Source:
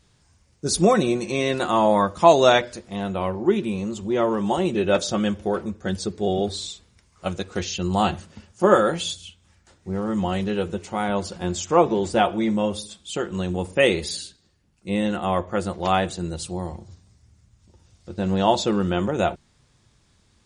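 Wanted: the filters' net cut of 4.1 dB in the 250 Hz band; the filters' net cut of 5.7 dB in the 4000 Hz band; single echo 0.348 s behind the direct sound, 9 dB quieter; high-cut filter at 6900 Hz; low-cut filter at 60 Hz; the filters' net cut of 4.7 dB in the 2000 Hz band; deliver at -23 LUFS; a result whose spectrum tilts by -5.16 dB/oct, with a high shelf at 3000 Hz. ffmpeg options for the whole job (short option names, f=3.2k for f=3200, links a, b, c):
-af "highpass=60,lowpass=6.9k,equalizer=f=250:t=o:g=-6,equalizer=f=2k:t=o:g=-6,highshelf=f=3k:g=5,equalizer=f=4k:t=o:g=-8.5,aecho=1:1:348:0.355,volume=1.5dB"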